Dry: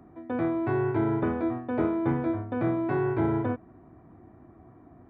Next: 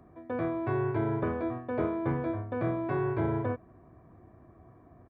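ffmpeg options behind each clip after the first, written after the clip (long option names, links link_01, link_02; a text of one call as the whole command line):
ffmpeg -i in.wav -af "aecho=1:1:1.8:0.38,volume=-2.5dB" out.wav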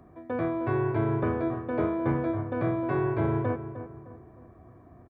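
ffmpeg -i in.wav -filter_complex "[0:a]asplit=2[link_01][link_02];[link_02]adelay=306,lowpass=frequency=1900:poles=1,volume=-11dB,asplit=2[link_03][link_04];[link_04]adelay=306,lowpass=frequency=1900:poles=1,volume=0.41,asplit=2[link_05][link_06];[link_06]adelay=306,lowpass=frequency=1900:poles=1,volume=0.41,asplit=2[link_07][link_08];[link_08]adelay=306,lowpass=frequency=1900:poles=1,volume=0.41[link_09];[link_01][link_03][link_05][link_07][link_09]amix=inputs=5:normalize=0,volume=2.5dB" out.wav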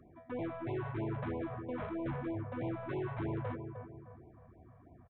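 ffmpeg -i in.wav -af "aresample=8000,asoftclip=type=tanh:threshold=-26.5dB,aresample=44100,afftfilt=real='re*(1-between(b*sr/1024,280*pow(1500/280,0.5+0.5*sin(2*PI*3.1*pts/sr))/1.41,280*pow(1500/280,0.5+0.5*sin(2*PI*3.1*pts/sr))*1.41))':imag='im*(1-between(b*sr/1024,280*pow(1500/280,0.5+0.5*sin(2*PI*3.1*pts/sr))/1.41,280*pow(1500/280,0.5+0.5*sin(2*PI*3.1*pts/sr))*1.41))':win_size=1024:overlap=0.75,volume=-5.5dB" out.wav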